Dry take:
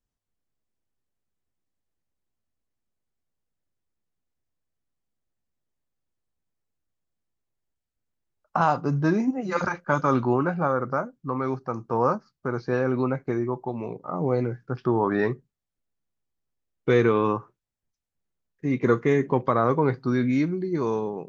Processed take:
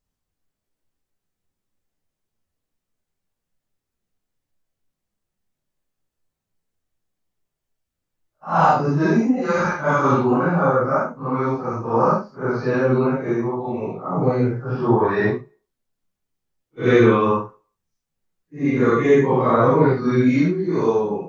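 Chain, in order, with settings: phase randomisation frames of 200 ms; on a send: reverberation RT60 0.50 s, pre-delay 3 ms, DRR 21 dB; on the sum: trim +6 dB

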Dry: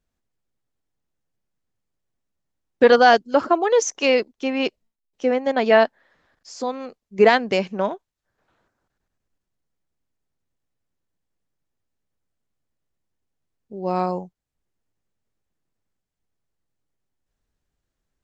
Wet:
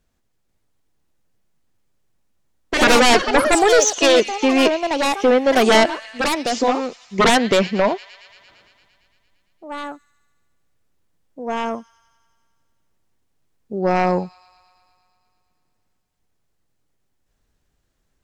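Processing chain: feedback echo behind a high-pass 114 ms, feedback 75%, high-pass 2.6 kHz, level -15.5 dB; sine folder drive 13 dB, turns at -1.5 dBFS; ever faster or slower copies 492 ms, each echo +4 st, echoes 2, each echo -6 dB; 2.87–3.53 s: three bands expanded up and down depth 40%; trim -8 dB

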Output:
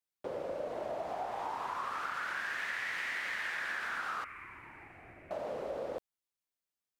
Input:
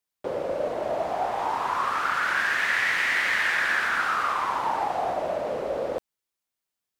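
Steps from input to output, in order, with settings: 4.24–5.31 s: FFT filter 100 Hz 0 dB, 200 Hz -11 dB, 350 Hz -9 dB, 510 Hz -23 dB, 870 Hz -25 dB, 2.3 kHz +1 dB, 3.4 kHz -25 dB, 5.7 kHz -25 dB, 9.6 kHz -16 dB; compression, threshold -26 dBFS, peak gain reduction 6 dB; trim -8 dB

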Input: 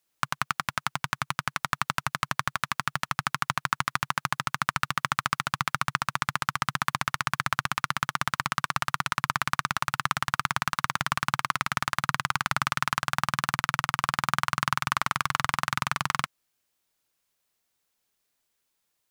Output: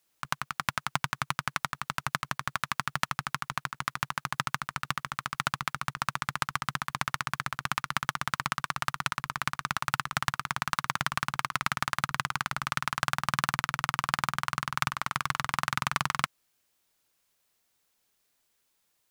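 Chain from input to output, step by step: compressor with a negative ratio -29 dBFS, ratio -0.5

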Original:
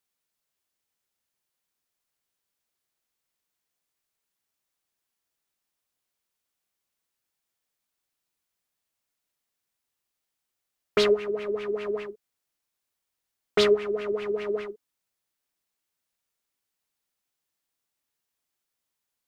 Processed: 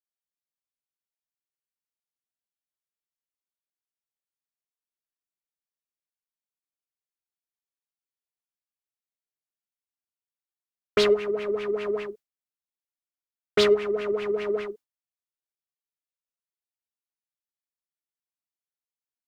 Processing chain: gate with hold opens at -31 dBFS; in parallel at -8.5 dB: saturation -27.5 dBFS, distortion -5 dB

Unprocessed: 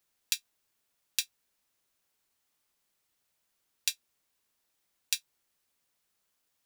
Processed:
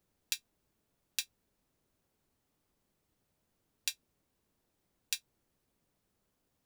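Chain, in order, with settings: tilt shelf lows +10 dB, about 700 Hz; trim +4.5 dB

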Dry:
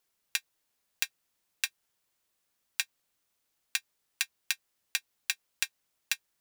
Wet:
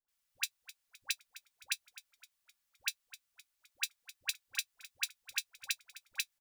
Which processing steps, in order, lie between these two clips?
block-companded coder 7-bit; peaking EQ 360 Hz -11 dB 2.2 oct; hum notches 50/100/150/200/250 Hz; comb 3.5 ms, depth 34%; phase dispersion highs, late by 85 ms, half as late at 780 Hz; frequency-shifting echo 258 ms, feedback 47%, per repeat -60 Hz, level -17 dB; trim -4 dB

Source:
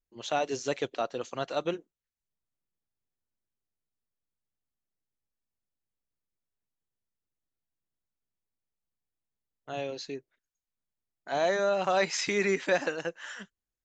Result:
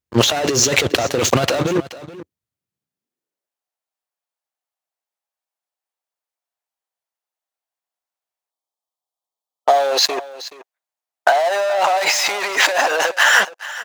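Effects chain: spectral selection erased 8.51–9.91 s, 1.3–3 kHz; waveshaping leveller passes 5; compressor with a negative ratio -26 dBFS, ratio -1; high-pass sweep 89 Hz -> 730 Hz, 2.62–3.58 s; delay 426 ms -16.5 dB; trim +8 dB

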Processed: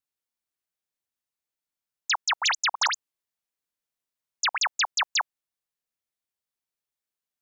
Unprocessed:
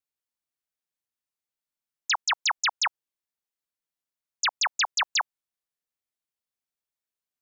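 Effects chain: 2.25–4.58 s: chunks repeated in reverse 126 ms, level -4 dB

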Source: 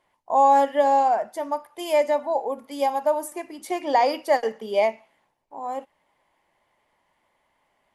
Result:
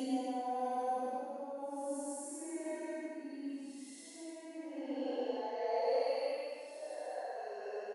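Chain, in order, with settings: Doppler pass-by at 1.78 s, 30 m/s, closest 15 m; compression, threshold -27 dBFS, peak gain reduction 11 dB; slow attack 193 ms; Paulstretch 4.3×, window 0.25 s, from 2.70 s; on a send: delay 346 ms -14.5 dB; on the sum: high-pass sweep 280 Hz -> 570 Hz, 4.83–6.11 s; trim -1.5 dB

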